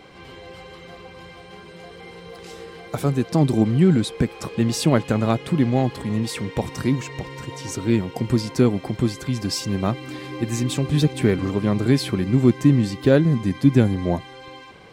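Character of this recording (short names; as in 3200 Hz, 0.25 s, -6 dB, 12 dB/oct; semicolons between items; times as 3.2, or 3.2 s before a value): noise floor -43 dBFS; spectral tilt -7.0 dB/oct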